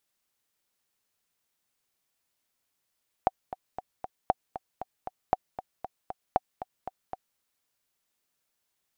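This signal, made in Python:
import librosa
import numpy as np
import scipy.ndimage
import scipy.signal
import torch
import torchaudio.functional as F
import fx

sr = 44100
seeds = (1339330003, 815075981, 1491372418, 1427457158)

y = fx.click_track(sr, bpm=233, beats=4, bars=4, hz=751.0, accent_db=13.5, level_db=-8.5)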